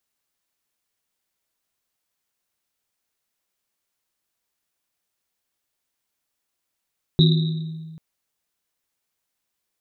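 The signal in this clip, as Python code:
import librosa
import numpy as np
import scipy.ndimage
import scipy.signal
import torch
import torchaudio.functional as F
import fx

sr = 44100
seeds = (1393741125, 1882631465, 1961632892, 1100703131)

y = fx.risset_drum(sr, seeds[0], length_s=0.79, hz=160.0, decay_s=1.86, noise_hz=3800.0, noise_width_hz=290.0, noise_pct=20)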